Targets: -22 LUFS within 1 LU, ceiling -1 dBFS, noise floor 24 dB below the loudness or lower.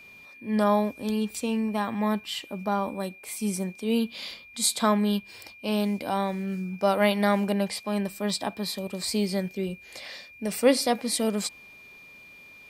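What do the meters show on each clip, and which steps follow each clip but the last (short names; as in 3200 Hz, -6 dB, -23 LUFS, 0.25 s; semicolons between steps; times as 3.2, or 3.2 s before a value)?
dropouts 4; longest dropout 1.2 ms; steady tone 2400 Hz; tone level -47 dBFS; loudness -27.5 LUFS; peak -8.5 dBFS; loudness target -22.0 LUFS
-> interpolate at 3.29/4.31/8.3/10.59, 1.2 ms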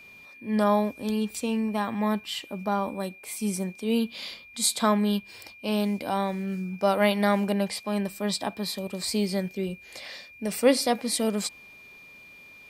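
dropouts 0; steady tone 2400 Hz; tone level -47 dBFS
-> notch 2400 Hz, Q 30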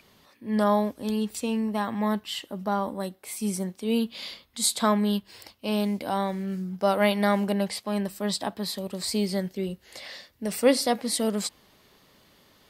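steady tone none; loudness -27.5 LUFS; peak -8.5 dBFS; loudness target -22.0 LUFS
-> gain +5.5 dB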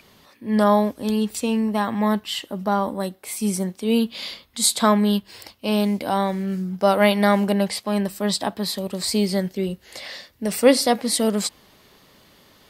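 loudness -22.0 LUFS; peak -3.0 dBFS; noise floor -55 dBFS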